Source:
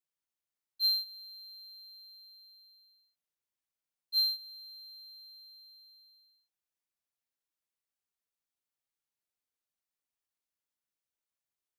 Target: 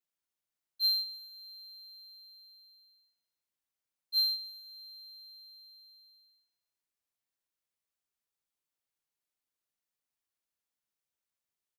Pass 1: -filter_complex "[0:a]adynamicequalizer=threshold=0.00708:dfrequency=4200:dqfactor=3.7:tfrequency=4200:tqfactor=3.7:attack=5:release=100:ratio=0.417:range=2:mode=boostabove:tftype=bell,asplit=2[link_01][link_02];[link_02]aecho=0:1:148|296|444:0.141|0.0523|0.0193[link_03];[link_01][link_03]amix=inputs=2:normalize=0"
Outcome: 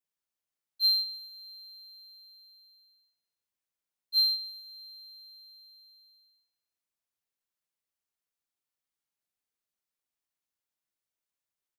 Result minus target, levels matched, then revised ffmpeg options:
8,000 Hz band −3.5 dB
-filter_complex "[0:a]adynamicequalizer=threshold=0.00708:dfrequency=9500:dqfactor=3.7:tfrequency=9500:tqfactor=3.7:attack=5:release=100:ratio=0.417:range=2:mode=boostabove:tftype=bell,asplit=2[link_01][link_02];[link_02]aecho=0:1:148|296|444:0.141|0.0523|0.0193[link_03];[link_01][link_03]amix=inputs=2:normalize=0"

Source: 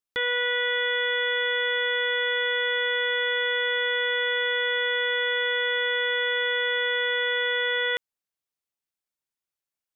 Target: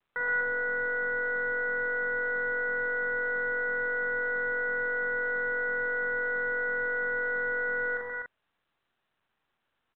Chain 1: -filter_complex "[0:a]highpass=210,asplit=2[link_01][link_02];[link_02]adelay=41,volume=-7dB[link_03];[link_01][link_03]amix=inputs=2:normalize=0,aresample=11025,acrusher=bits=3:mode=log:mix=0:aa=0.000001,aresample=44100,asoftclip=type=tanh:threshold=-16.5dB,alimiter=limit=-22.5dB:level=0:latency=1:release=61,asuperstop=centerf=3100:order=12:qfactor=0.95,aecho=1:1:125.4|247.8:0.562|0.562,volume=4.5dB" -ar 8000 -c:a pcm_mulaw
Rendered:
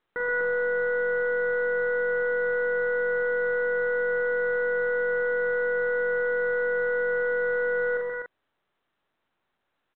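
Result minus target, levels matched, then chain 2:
250 Hz band −3.5 dB
-filter_complex "[0:a]highpass=820,asplit=2[link_01][link_02];[link_02]adelay=41,volume=-7dB[link_03];[link_01][link_03]amix=inputs=2:normalize=0,aresample=11025,acrusher=bits=3:mode=log:mix=0:aa=0.000001,aresample=44100,asoftclip=type=tanh:threshold=-16.5dB,alimiter=limit=-22.5dB:level=0:latency=1:release=61,asuperstop=centerf=3100:order=12:qfactor=0.95,aecho=1:1:125.4|247.8:0.562|0.562,volume=4.5dB" -ar 8000 -c:a pcm_mulaw

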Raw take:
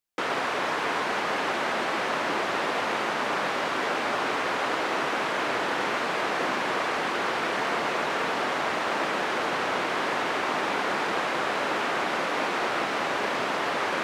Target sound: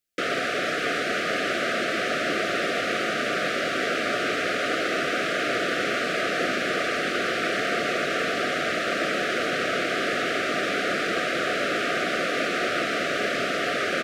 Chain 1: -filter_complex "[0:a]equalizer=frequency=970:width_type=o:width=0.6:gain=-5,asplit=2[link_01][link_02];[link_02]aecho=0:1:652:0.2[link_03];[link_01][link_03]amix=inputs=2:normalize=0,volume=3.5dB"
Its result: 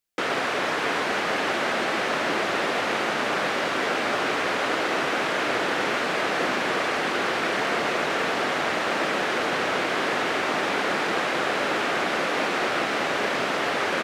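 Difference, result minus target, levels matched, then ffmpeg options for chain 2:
1,000 Hz band +3.0 dB
-filter_complex "[0:a]asuperstop=centerf=930:order=20:qfactor=2.2,equalizer=frequency=970:width_type=o:width=0.6:gain=-5,asplit=2[link_01][link_02];[link_02]aecho=0:1:652:0.2[link_03];[link_01][link_03]amix=inputs=2:normalize=0,volume=3.5dB"

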